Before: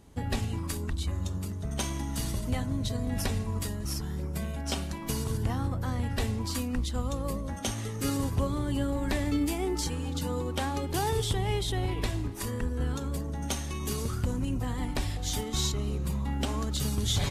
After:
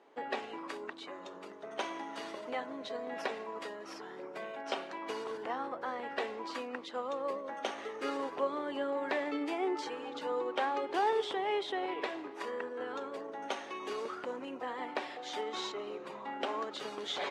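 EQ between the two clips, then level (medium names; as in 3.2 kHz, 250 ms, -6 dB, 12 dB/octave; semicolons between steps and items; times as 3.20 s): high-pass 390 Hz 24 dB/octave; low-pass 2.3 kHz 12 dB/octave; +2.0 dB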